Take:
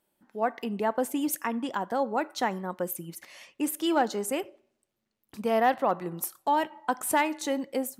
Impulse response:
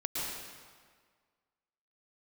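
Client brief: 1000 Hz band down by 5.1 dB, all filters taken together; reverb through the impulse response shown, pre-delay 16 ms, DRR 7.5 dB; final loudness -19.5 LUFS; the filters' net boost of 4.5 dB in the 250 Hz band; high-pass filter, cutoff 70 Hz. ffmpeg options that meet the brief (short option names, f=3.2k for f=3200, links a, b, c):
-filter_complex "[0:a]highpass=70,equalizer=f=250:t=o:g=6,equalizer=f=1k:t=o:g=-7.5,asplit=2[a][b];[1:a]atrim=start_sample=2205,adelay=16[c];[b][c]afir=irnorm=-1:irlink=0,volume=-12.5dB[d];[a][d]amix=inputs=2:normalize=0,volume=8.5dB"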